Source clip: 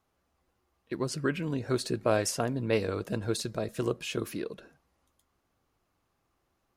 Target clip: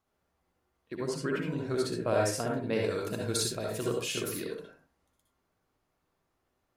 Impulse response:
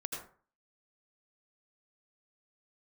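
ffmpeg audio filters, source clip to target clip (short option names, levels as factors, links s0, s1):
-filter_complex "[0:a]asettb=1/sr,asplit=3[s0][s1][s2];[s0]atrim=end=2.844[s3];[s1]atrim=start=2.84:end=4.57,asetpts=PTS-STARTPTS,afade=t=in:d=0.004:c=qsin,afade=t=out:st=1.726:d=0.004:c=qsin,highshelf=f=3200:g=11.5[s4];[s2]atrim=start=4.566[s5];[s3][s4]acrossfade=d=0.004:c1=hsin:c2=qsin[s6];[s6][s5]acrossfade=d=0.004:c1=qsin:c2=hsin[s7];[1:a]atrim=start_sample=2205,asetrate=57330,aresample=44100[s8];[s7][s8]afir=irnorm=-1:irlink=0"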